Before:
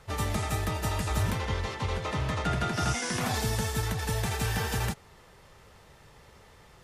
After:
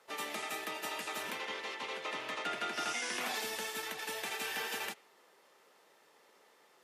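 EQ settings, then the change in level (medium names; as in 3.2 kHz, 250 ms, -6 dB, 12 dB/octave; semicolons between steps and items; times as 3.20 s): high-pass 280 Hz 24 dB/octave; peaking EQ 13 kHz +4.5 dB 0.34 oct; dynamic bell 2.6 kHz, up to +8 dB, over -51 dBFS, Q 1.1; -8.0 dB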